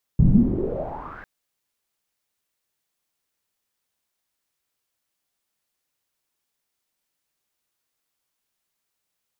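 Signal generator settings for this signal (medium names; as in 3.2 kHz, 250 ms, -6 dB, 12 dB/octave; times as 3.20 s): swept filtered noise pink, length 1.05 s lowpass, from 140 Hz, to 1.7 kHz, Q 7.4, gain ramp -31 dB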